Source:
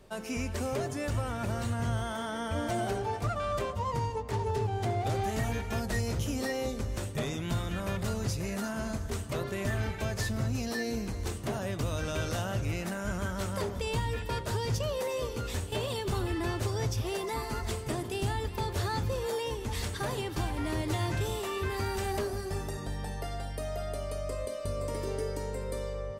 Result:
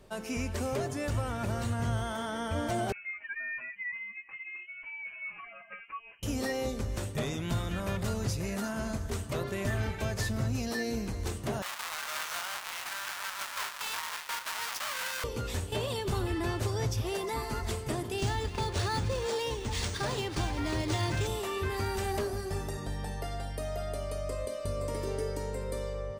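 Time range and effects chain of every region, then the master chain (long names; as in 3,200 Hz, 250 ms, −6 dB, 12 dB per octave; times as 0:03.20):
0:02.92–0:06.23: expanding power law on the bin magnitudes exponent 1.6 + high-pass filter 1,000 Hz + voice inversion scrambler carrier 3,000 Hz
0:11.62–0:15.24: each half-wave held at its own peak + high-pass filter 970 Hz 24 dB per octave + bad sample-rate conversion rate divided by 2×, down none, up hold
0:18.18–0:21.27: high-shelf EQ 3,400 Hz +8 dB + linearly interpolated sample-rate reduction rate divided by 3×
whole clip: no processing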